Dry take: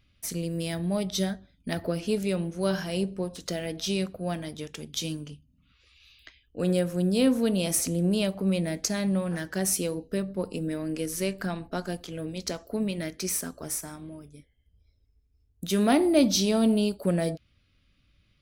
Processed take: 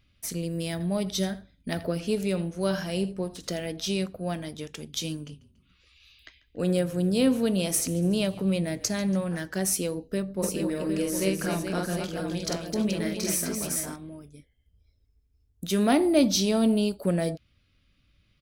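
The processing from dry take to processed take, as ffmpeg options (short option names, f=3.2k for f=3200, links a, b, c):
-filter_complex "[0:a]asettb=1/sr,asplit=3[a][b][c];[a]atrim=end=0.724[d];[b]atrim=start=0.72:end=3.6,asetpts=PTS-STARTPTS,afade=t=in:d=0.004:c=qsin,afade=t=out:st=2.876:d=0.004:c=qsin,aecho=1:1:82:0.168,atrim=end_sample=127008[e];[c]atrim=start=3.596[f];[d][e]acrossfade=d=0.004:c1=hsin:c2=qsin[g];[g][f]acrossfade=d=0.004:c1=qsin:c2=hsin,asettb=1/sr,asplit=3[h][i][j];[h]atrim=end=5.134[k];[i]atrim=start=5.13:end=9.24,asetpts=PTS-STARTPTS,afade=t=in:d=0.004:c=qsin,afade=t=out:st=4.106:d=0.004:c=qsin,asplit=5[l][m][n][o][p];[m]adelay=142,afreqshift=-32,volume=-20dB[q];[n]adelay=284,afreqshift=-64,volume=-26.2dB[r];[o]adelay=426,afreqshift=-96,volume=-32.4dB[s];[p]adelay=568,afreqshift=-128,volume=-38.6dB[t];[l][q][r][s][t]amix=inputs=5:normalize=0,atrim=end_sample=181251[u];[j]atrim=start=9.236[v];[k][u]acrossfade=d=0.004:c1=hsin:c2=qsin[w];[w][v]acrossfade=d=0.004:c1=qsin:c2=hsin,asplit=3[x][y][z];[x]afade=t=out:st=10.42:d=0.02[aa];[y]aecho=1:1:47|258|428|755:0.708|0.531|0.422|0.422,afade=t=in:st=10.42:d=0.02,afade=t=out:st=13.94:d=0.02[ab];[z]afade=t=in:st=13.94:d=0.02[ac];[aa][ab][ac]amix=inputs=3:normalize=0"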